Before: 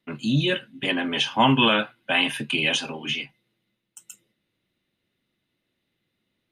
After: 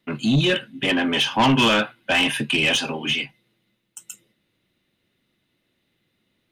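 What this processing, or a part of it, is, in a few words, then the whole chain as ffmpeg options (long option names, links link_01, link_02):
saturation between pre-emphasis and de-emphasis: -af "highshelf=frequency=5100:gain=7,asoftclip=type=tanh:threshold=-18dB,highshelf=frequency=5100:gain=-7,volume=6dB"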